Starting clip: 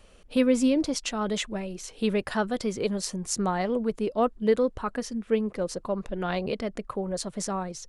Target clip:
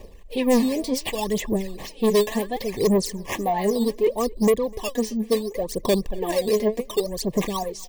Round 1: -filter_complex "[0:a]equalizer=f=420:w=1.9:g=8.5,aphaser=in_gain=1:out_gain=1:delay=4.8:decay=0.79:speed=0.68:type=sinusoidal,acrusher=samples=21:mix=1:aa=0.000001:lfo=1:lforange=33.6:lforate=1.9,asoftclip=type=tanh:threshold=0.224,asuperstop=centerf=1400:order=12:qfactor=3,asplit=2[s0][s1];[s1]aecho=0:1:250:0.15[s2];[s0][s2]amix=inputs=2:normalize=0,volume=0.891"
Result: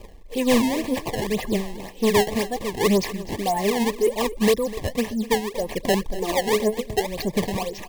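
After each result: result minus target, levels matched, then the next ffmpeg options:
decimation with a swept rate: distortion +11 dB; echo-to-direct +9 dB
-filter_complex "[0:a]equalizer=f=420:w=1.9:g=8.5,aphaser=in_gain=1:out_gain=1:delay=4.8:decay=0.79:speed=0.68:type=sinusoidal,acrusher=samples=6:mix=1:aa=0.000001:lfo=1:lforange=9.6:lforate=1.9,asoftclip=type=tanh:threshold=0.224,asuperstop=centerf=1400:order=12:qfactor=3,asplit=2[s0][s1];[s1]aecho=0:1:250:0.15[s2];[s0][s2]amix=inputs=2:normalize=0,volume=0.891"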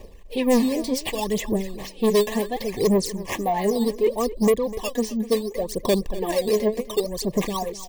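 echo-to-direct +9 dB
-filter_complex "[0:a]equalizer=f=420:w=1.9:g=8.5,aphaser=in_gain=1:out_gain=1:delay=4.8:decay=0.79:speed=0.68:type=sinusoidal,acrusher=samples=6:mix=1:aa=0.000001:lfo=1:lforange=9.6:lforate=1.9,asoftclip=type=tanh:threshold=0.224,asuperstop=centerf=1400:order=12:qfactor=3,asplit=2[s0][s1];[s1]aecho=0:1:250:0.0531[s2];[s0][s2]amix=inputs=2:normalize=0,volume=0.891"

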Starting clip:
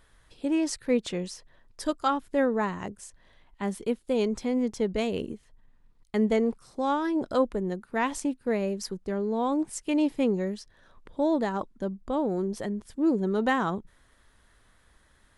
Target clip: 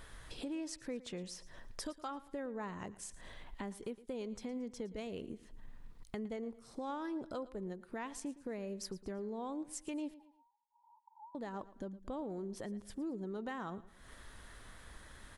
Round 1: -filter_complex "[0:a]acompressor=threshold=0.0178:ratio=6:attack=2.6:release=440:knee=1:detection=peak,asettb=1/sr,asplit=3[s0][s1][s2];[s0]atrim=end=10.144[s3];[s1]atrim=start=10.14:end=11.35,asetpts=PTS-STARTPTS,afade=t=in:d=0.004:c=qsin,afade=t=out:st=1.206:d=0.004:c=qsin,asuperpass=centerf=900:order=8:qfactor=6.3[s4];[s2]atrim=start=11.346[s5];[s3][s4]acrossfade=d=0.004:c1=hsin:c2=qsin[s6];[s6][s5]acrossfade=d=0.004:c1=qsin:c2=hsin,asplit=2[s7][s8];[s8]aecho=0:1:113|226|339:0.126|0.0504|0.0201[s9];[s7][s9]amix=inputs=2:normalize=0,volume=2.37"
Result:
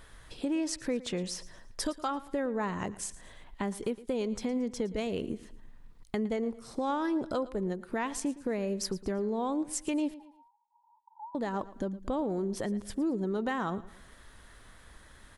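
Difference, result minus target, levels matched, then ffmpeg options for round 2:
compression: peak gain reduction -10 dB
-filter_complex "[0:a]acompressor=threshold=0.00447:ratio=6:attack=2.6:release=440:knee=1:detection=peak,asettb=1/sr,asplit=3[s0][s1][s2];[s0]atrim=end=10.144[s3];[s1]atrim=start=10.14:end=11.35,asetpts=PTS-STARTPTS,afade=t=in:d=0.004:c=qsin,afade=t=out:st=1.206:d=0.004:c=qsin,asuperpass=centerf=900:order=8:qfactor=6.3[s4];[s2]atrim=start=11.346[s5];[s3][s4]acrossfade=d=0.004:c1=hsin:c2=qsin[s6];[s6][s5]acrossfade=d=0.004:c1=qsin:c2=hsin,asplit=2[s7][s8];[s8]aecho=0:1:113|226|339:0.126|0.0504|0.0201[s9];[s7][s9]amix=inputs=2:normalize=0,volume=2.37"

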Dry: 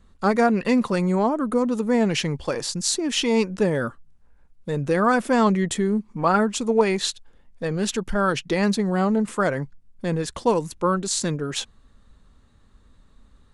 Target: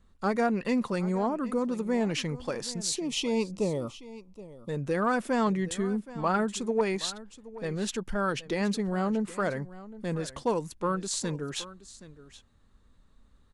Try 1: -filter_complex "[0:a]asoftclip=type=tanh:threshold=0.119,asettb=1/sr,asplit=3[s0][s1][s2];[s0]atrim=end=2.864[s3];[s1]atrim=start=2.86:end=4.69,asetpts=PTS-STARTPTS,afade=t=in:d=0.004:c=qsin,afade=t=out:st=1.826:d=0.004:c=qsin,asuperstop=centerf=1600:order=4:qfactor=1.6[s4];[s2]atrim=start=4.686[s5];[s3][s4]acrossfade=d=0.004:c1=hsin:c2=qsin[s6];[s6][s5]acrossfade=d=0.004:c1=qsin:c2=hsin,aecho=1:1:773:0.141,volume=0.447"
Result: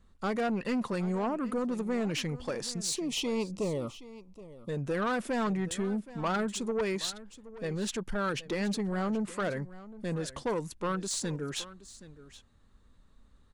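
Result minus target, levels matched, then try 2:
saturation: distortion +17 dB
-filter_complex "[0:a]asoftclip=type=tanh:threshold=0.473,asettb=1/sr,asplit=3[s0][s1][s2];[s0]atrim=end=2.864[s3];[s1]atrim=start=2.86:end=4.69,asetpts=PTS-STARTPTS,afade=t=in:d=0.004:c=qsin,afade=t=out:st=1.826:d=0.004:c=qsin,asuperstop=centerf=1600:order=4:qfactor=1.6[s4];[s2]atrim=start=4.686[s5];[s3][s4]acrossfade=d=0.004:c1=hsin:c2=qsin[s6];[s6][s5]acrossfade=d=0.004:c1=qsin:c2=hsin,aecho=1:1:773:0.141,volume=0.447"

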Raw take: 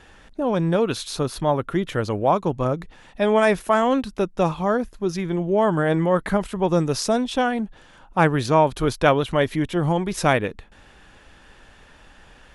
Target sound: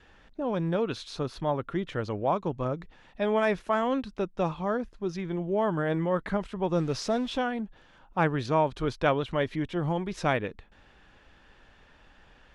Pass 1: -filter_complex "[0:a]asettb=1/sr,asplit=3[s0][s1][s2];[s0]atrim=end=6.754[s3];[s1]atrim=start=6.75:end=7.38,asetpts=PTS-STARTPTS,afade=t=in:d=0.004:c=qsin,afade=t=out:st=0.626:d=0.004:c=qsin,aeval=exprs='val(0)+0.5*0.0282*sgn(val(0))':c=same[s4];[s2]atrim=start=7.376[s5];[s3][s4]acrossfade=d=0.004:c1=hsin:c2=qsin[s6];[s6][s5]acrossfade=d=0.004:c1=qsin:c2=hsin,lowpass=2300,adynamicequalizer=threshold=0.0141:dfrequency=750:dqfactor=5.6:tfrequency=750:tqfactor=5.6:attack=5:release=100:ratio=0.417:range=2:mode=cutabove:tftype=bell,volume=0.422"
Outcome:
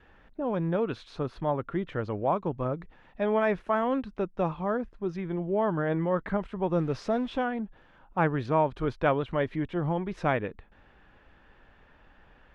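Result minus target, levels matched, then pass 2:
4 kHz band -7.5 dB
-filter_complex "[0:a]asettb=1/sr,asplit=3[s0][s1][s2];[s0]atrim=end=6.754[s3];[s1]atrim=start=6.75:end=7.38,asetpts=PTS-STARTPTS,afade=t=in:d=0.004:c=qsin,afade=t=out:st=0.626:d=0.004:c=qsin,aeval=exprs='val(0)+0.5*0.0282*sgn(val(0))':c=same[s4];[s2]atrim=start=7.376[s5];[s3][s4]acrossfade=d=0.004:c1=hsin:c2=qsin[s6];[s6][s5]acrossfade=d=0.004:c1=qsin:c2=hsin,lowpass=5100,adynamicequalizer=threshold=0.0141:dfrequency=750:dqfactor=5.6:tfrequency=750:tqfactor=5.6:attack=5:release=100:ratio=0.417:range=2:mode=cutabove:tftype=bell,volume=0.422"

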